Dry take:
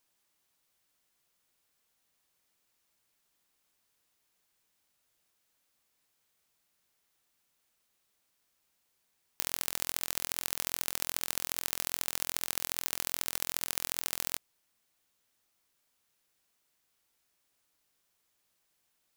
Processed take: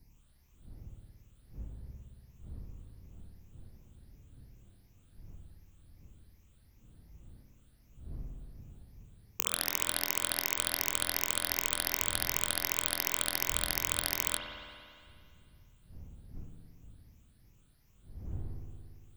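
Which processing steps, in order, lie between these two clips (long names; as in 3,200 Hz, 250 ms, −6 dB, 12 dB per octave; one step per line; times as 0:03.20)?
rippled gain that drifts along the octave scale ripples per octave 0.77, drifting +2.7 Hz, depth 17 dB
wind on the microphone 88 Hz −50 dBFS
spring reverb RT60 2.2 s, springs 57 ms, chirp 40 ms, DRR 1 dB
level −1.5 dB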